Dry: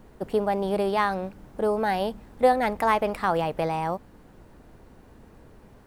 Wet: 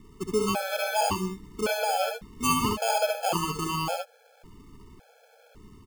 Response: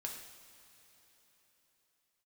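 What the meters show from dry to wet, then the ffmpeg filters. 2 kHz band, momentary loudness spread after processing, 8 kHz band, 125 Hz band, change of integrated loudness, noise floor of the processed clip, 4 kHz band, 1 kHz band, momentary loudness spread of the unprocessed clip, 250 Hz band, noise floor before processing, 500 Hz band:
-0.5 dB, 7 LU, +16.5 dB, +0.5 dB, -2.0 dB, -60 dBFS, +7.5 dB, -3.0 dB, 9 LU, -1.5 dB, -52 dBFS, -4.5 dB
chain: -af "acrusher=samples=23:mix=1:aa=0.000001,aecho=1:1:65|76:0.473|0.473,afftfilt=real='re*gt(sin(2*PI*0.9*pts/sr)*(1-2*mod(floor(b*sr/1024/440),2)),0)':imag='im*gt(sin(2*PI*0.9*pts/sr)*(1-2*mod(floor(b*sr/1024/440),2)),0)':win_size=1024:overlap=0.75"

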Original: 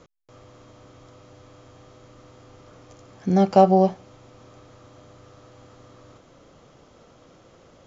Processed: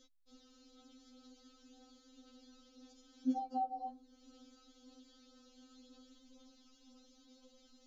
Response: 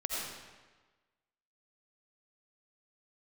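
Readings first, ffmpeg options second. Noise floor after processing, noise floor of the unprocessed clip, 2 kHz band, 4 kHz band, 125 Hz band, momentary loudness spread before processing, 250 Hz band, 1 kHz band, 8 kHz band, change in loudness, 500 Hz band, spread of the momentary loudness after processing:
-68 dBFS, -54 dBFS, under -25 dB, -13.5 dB, under -40 dB, 9 LU, -18.5 dB, -17.5 dB, no reading, -21.0 dB, -35.5 dB, 9 LU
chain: -filter_complex "[0:a]acrossover=split=500|880[s0][s1][s2];[s2]acompressor=threshold=0.00178:ratio=20[s3];[s0][s1][s3]amix=inputs=3:normalize=0,equalizer=f=500:t=o:w=1:g=-7,equalizer=f=1000:t=o:w=1:g=-9,equalizer=f=2000:t=o:w=1:g=-11,equalizer=f=4000:t=o:w=1:g=11,flanger=delay=3.2:depth=1.5:regen=46:speed=0.97:shape=triangular,afftfilt=real='re*3.46*eq(mod(b,12),0)':imag='im*3.46*eq(mod(b,12),0)':win_size=2048:overlap=0.75,volume=0.75"

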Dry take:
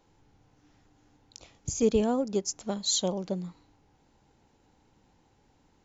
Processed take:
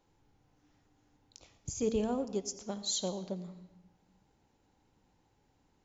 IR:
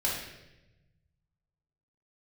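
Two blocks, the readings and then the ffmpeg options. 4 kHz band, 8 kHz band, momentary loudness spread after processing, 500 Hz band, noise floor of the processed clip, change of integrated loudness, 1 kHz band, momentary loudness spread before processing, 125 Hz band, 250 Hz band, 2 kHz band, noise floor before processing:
-6.5 dB, no reading, 15 LU, -6.5 dB, -73 dBFS, -6.5 dB, -6.5 dB, 11 LU, -6.5 dB, -6.5 dB, -6.5 dB, -67 dBFS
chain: -filter_complex "[0:a]bandreject=f=227.2:t=h:w=4,bandreject=f=454.4:t=h:w=4,bandreject=f=681.6:t=h:w=4,bandreject=f=908.8:t=h:w=4,bandreject=f=1136:t=h:w=4,bandreject=f=1363.2:t=h:w=4,bandreject=f=1590.4:t=h:w=4,bandreject=f=1817.6:t=h:w=4,bandreject=f=2044.8:t=h:w=4,bandreject=f=2272:t=h:w=4,bandreject=f=2499.2:t=h:w=4,bandreject=f=2726.4:t=h:w=4,bandreject=f=2953.6:t=h:w=4,bandreject=f=3180.8:t=h:w=4,bandreject=f=3408:t=h:w=4,bandreject=f=3635.2:t=h:w=4,bandreject=f=3862.4:t=h:w=4,bandreject=f=4089.6:t=h:w=4,bandreject=f=4316.8:t=h:w=4,bandreject=f=4544:t=h:w=4,bandreject=f=4771.2:t=h:w=4,bandreject=f=4998.4:t=h:w=4,bandreject=f=5225.6:t=h:w=4,bandreject=f=5452.8:t=h:w=4,bandreject=f=5680:t=h:w=4,bandreject=f=5907.2:t=h:w=4,bandreject=f=6134.4:t=h:w=4,bandreject=f=6361.6:t=h:w=4,bandreject=f=6588.8:t=h:w=4,bandreject=f=6816:t=h:w=4,asplit=2[s0][s1];[1:a]atrim=start_sample=2205,asetrate=52920,aresample=44100,adelay=85[s2];[s1][s2]afir=irnorm=-1:irlink=0,volume=0.1[s3];[s0][s3]amix=inputs=2:normalize=0,volume=0.473"

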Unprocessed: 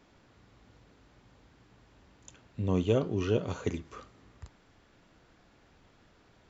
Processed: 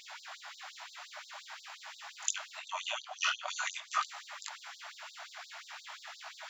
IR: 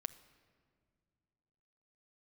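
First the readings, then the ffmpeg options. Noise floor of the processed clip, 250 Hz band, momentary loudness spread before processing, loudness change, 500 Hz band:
-56 dBFS, under -40 dB, 21 LU, -8.5 dB, -18.5 dB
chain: -filter_complex "[0:a]bandreject=f=470:w=14,asplit=2[s0][s1];[s1]acompressor=threshold=0.00708:ratio=6,volume=1.12[s2];[s0][s2]amix=inputs=2:normalize=0,alimiter=level_in=1.06:limit=0.0631:level=0:latency=1:release=470,volume=0.944,flanger=delay=19.5:depth=6.8:speed=0.47,afftfilt=real='re*gte(b*sr/1024,590*pow(3700/590,0.5+0.5*sin(2*PI*5.7*pts/sr)))':imag='im*gte(b*sr/1024,590*pow(3700/590,0.5+0.5*sin(2*PI*5.7*pts/sr)))':win_size=1024:overlap=0.75,volume=7.94"

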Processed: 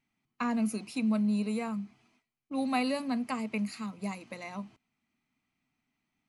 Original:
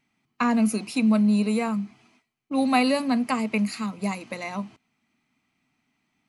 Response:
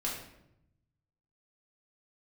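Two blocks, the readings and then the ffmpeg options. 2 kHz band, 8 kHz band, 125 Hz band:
-9.0 dB, -9.0 dB, no reading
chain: -af "lowshelf=f=62:g=10.5,volume=0.355"

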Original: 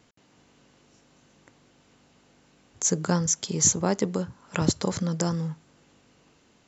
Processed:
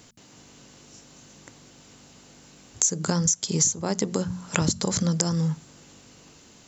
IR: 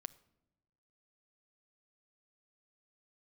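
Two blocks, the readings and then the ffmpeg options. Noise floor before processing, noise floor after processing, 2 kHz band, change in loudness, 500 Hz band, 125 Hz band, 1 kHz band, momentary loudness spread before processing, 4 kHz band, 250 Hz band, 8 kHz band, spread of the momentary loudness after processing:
-62 dBFS, -53 dBFS, +2.0 dB, +1.0 dB, -1.0 dB, +2.0 dB, -1.0 dB, 12 LU, +3.0 dB, +1.0 dB, no reading, 6 LU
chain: -af "bass=f=250:g=3,treble=f=4000:g=10,bandreject=f=45.13:t=h:w=4,bandreject=f=90.26:t=h:w=4,bandreject=f=135.39:t=h:w=4,bandreject=f=180.52:t=h:w=4,bandreject=f=225.65:t=h:w=4,acompressor=threshold=0.0501:ratio=16,volume=2.11"

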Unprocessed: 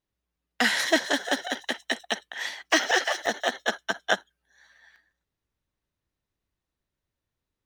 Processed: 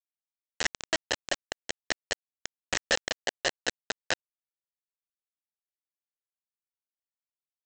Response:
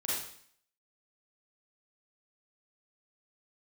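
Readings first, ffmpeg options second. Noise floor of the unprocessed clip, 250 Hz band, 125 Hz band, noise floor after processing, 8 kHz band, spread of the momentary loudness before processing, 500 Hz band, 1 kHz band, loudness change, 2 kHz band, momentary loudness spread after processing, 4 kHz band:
under -85 dBFS, -12.0 dB, no reading, under -85 dBFS, -1.5 dB, 9 LU, -7.0 dB, -9.5 dB, -6.0 dB, -7.0 dB, 10 LU, -5.0 dB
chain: -filter_complex "[0:a]asplit=3[s0][s1][s2];[s0]bandpass=f=530:t=q:w=8,volume=1[s3];[s1]bandpass=f=1840:t=q:w=8,volume=0.501[s4];[s2]bandpass=f=2480:t=q:w=8,volume=0.355[s5];[s3][s4][s5]amix=inputs=3:normalize=0,alimiter=level_in=1.33:limit=0.0631:level=0:latency=1:release=167,volume=0.75,aresample=16000,acrusher=bits=4:mix=0:aa=0.000001,aresample=44100,volume=2.82"

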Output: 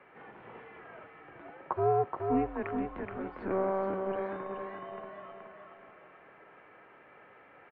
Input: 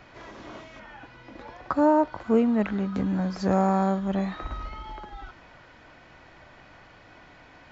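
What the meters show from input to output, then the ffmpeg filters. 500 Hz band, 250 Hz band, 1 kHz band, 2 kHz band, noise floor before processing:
-4.5 dB, -12.5 dB, -6.0 dB, -6.5 dB, -52 dBFS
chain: -af "aecho=1:1:425|850|1275|1700|2125:0.562|0.236|0.0992|0.0417|0.0175,highpass=f=410:t=q:w=0.5412,highpass=f=410:t=q:w=1.307,lowpass=f=2800:t=q:w=0.5176,lowpass=f=2800:t=q:w=0.7071,lowpass=f=2800:t=q:w=1.932,afreqshift=-190,volume=0.562"

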